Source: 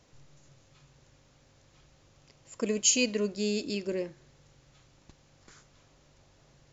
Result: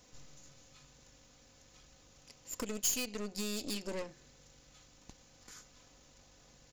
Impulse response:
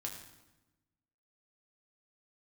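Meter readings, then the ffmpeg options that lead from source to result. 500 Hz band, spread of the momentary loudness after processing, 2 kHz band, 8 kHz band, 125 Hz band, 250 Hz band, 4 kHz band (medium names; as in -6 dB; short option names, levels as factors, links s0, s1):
-11.0 dB, 22 LU, -9.0 dB, no reading, -8.0 dB, -9.5 dB, -7.5 dB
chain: -af "aecho=1:1:4:0.45,acompressor=threshold=0.0178:ratio=6,aeval=exprs='0.0562*(cos(1*acos(clip(val(0)/0.0562,-1,1)))-cos(1*PI/2))+0.00708*(cos(8*acos(clip(val(0)/0.0562,-1,1)))-cos(8*PI/2))':c=same,aeval=exprs='0.0355*(abs(mod(val(0)/0.0355+3,4)-2)-1)':c=same,highshelf=f=5400:g=12,volume=0.794"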